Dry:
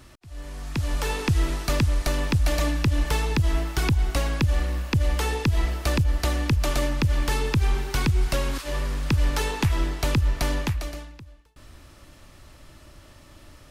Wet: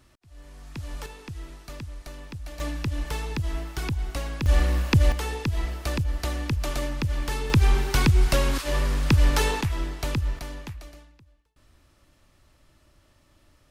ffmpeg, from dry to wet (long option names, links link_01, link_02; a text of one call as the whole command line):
ffmpeg -i in.wav -af "asetnsamples=nb_out_samples=441:pad=0,asendcmd='1.06 volume volume -16dB;2.6 volume volume -6.5dB;4.46 volume volume 3.5dB;5.12 volume volume -4.5dB;7.5 volume volume 3dB;9.61 volume volume -4.5dB;10.39 volume volume -11.5dB',volume=-9.5dB" out.wav